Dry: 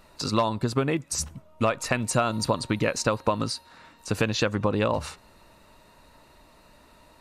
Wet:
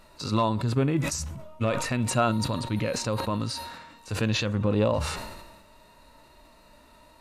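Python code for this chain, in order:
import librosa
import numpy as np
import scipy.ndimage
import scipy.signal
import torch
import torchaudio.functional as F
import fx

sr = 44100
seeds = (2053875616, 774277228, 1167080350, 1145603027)

y = fx.hpss(x, sr, part='percussive', gain_db=-14)
y = fx.sustainer(y, sr, db_per_s=43.0)
y = F.gain(torch.from_numpy(y), 3.0).numpy()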